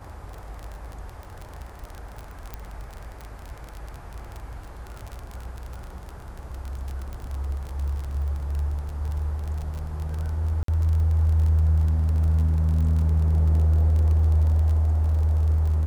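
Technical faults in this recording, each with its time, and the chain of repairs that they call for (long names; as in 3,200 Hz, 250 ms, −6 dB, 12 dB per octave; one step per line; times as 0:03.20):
surface crackle 30 per second −29 dBFS
0:02.54: click −19 dBFS
0:10.63–0:10.68: drop-out 53 ms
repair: click removal
repair the gap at 0:10.63, 53 ms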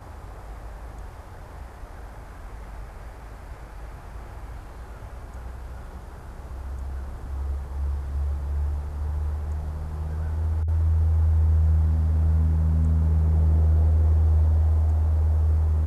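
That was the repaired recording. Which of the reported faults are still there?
0:02.54: click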